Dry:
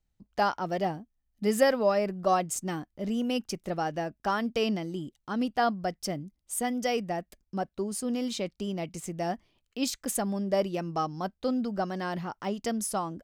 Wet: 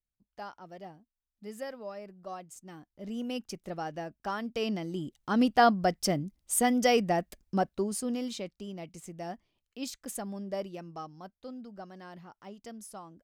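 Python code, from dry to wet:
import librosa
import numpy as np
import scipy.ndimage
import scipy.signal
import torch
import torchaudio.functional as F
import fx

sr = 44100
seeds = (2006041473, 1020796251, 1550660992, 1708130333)

y = fx.gain(x, sr, db=fx.line((2.61, -16.5), (3.2, -6.0), (4.47, -6.0), (5.37, 4.5), (7.55, 4.5), (8.62, -8.0), (10.49, -8.0), (11.39, -14.5)))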